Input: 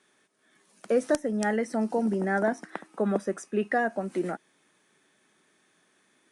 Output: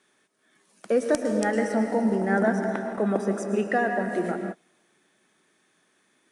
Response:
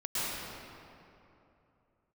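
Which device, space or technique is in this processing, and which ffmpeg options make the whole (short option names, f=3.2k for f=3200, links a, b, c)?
keyed gated reverb: -filter_complex "[0:a]asplit=3[a][b][c];[1:a]atrim=start_sample=2205[d];[b][d]afir=irnorm=-1:irlink=0[e];[c]apad=whole_len=278450[f];[e][f]sidechaingate=range=-33dB:threshold=-53dB:ratio=16:detection=peak,volume=-10.5dB[g];[a][g]amix=inputs=2:normalize=0"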